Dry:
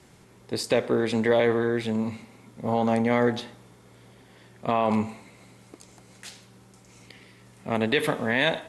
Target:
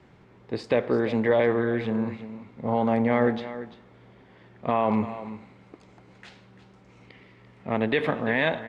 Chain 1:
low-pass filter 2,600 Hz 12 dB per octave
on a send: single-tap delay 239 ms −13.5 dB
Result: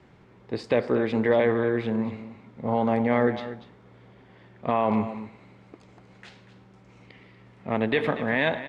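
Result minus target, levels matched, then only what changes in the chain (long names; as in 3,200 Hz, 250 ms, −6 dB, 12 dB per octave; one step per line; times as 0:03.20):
echo 103 ms early
change: single-tap delay 342 ms −13.5 dB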